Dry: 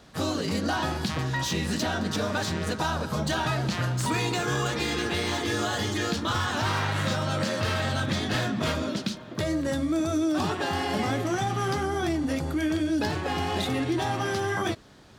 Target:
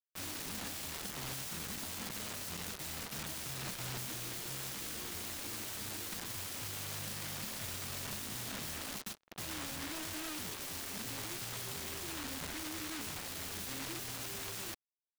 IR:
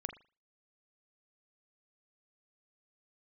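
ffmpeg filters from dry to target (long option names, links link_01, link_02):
-af "acrusher=bits=4:mix=0:aa=0.5,bass=frequency=250:gain=-3,treble=frequency=4000:gain=-2,aeval=exprs='(mod(29.9*val(0)+1,2)-1)/29.9':channel_layout=same,volume=-5dB"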